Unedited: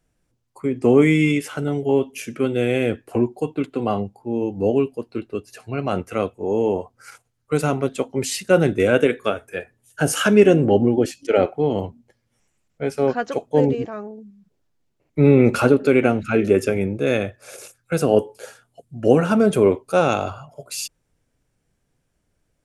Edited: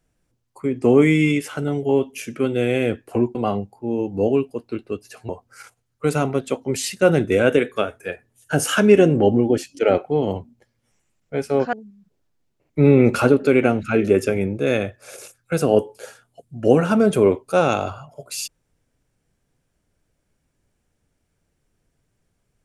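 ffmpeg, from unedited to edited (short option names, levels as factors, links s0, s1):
-filter_complex "[0:a]asplit=4[s0][s1][s2][s3];[s0]atrim=end=3.352[s4];[s1]atrim=start=3.778:end=5.722[s5];[s2]atrim=start=6.768:end=13.212[s6];[s3]atrim=start=14.128[s7];[s4][s5]acrossfade=d=0.004:c1=hsin:c2=hsin[s8];[s8][s6]acrossfade=d=0.004:c1=hsin:c2=hsin[s9];[s9][s7]acrossfade=d=0.004:c1=hsin:c2=hsin"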